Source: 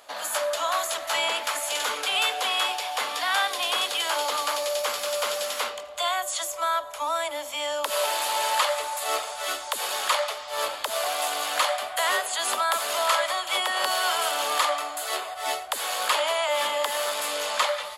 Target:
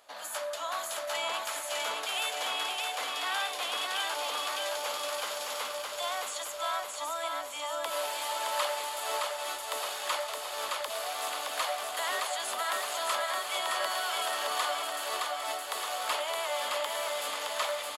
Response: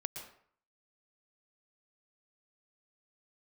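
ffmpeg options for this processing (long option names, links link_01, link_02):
-af "aecho=1:1:617|1234|1851|2468|3085|3702|4319|4936:0.708|0.396|0.222|0.124|0.0696|0.039|0.0218|0.0122,volume=-9dB"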